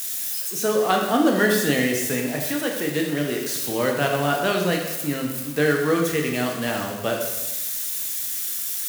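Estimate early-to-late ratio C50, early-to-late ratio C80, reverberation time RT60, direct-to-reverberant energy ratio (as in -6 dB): 4.0 dB, 6.0 dB, 1.1 s, 0.5 dB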